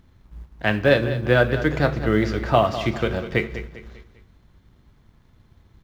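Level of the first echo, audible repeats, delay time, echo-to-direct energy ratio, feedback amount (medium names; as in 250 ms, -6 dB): -12.5 dB, 3, 199 ms, -11.5 dB, 41%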